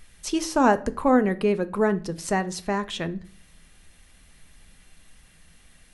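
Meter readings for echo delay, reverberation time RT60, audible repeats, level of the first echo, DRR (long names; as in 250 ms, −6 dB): no echo audible, 0.45 s, no echo audible, no echo audible, 11.0 dB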